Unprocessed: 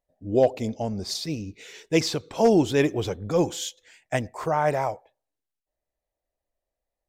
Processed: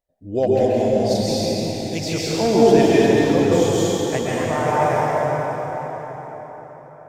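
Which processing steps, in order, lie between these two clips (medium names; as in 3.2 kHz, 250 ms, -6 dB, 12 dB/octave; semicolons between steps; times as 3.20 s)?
1.48–2.11 s: peaking EQ 720 Hz -13.5 dB 2.6 oct; plate-style reverb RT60 5 s, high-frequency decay 0.65×, pre-delay 115 ms, DRR -8 dB; trim -1.5 dB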